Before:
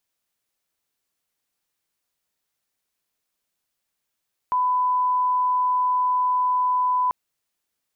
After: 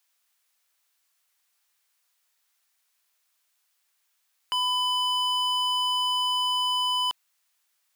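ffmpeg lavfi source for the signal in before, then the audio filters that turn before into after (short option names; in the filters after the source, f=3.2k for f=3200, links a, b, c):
-f lavfi -i "sine=f=1000:d=2.59:r=44100,volume=0.06dB"
-af "highpass=930,acontrast=85,aeval=exprs='0.106*(abs(mod(val(0)/0.106+3,4)-2)-1)':c=same"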